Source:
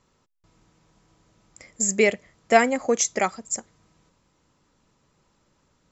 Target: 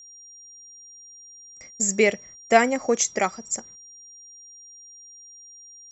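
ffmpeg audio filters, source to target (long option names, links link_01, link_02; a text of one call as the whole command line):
ffmpeg -i in.wav -af "agate=range=-20dB:threshold=-48dB:ratio=16:detection=peak,aeval=exprs='val(0)+0.00631*sin(2*PI*5700*n/s)':channel_layout=same" out.wav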